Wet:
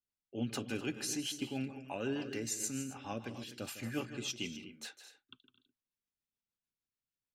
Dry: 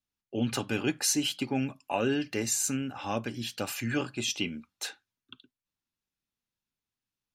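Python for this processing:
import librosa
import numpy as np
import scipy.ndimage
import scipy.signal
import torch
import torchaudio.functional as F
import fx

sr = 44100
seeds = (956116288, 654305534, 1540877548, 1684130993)

y = fx.echo_multitap(x, sr, ms=(156, 218, 250), db=(-12.5, -15.5, -12.5))
y = fx.rotary(y, sr, hz=6.7)
y = F.gain(torch.from_numpy(y), -7.0).numpy()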